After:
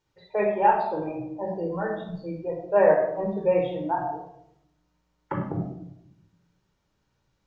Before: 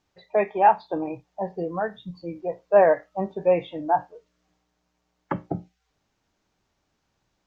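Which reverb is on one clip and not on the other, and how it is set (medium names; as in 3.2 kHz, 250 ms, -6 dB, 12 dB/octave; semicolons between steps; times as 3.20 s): simulated room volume 2000 m³, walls furnished, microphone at 4.6 m; trim -6 dB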